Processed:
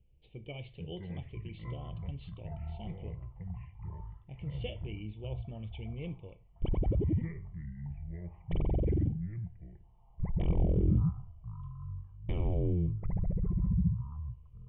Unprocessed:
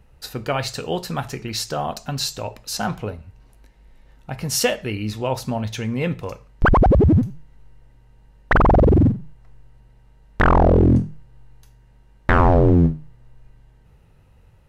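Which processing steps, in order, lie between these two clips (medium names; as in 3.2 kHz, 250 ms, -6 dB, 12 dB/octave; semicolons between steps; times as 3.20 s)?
cascade formant filter i; ever faster or slower copies 278 ms, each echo -7 st, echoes 3; static phaser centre 620 Hz, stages 4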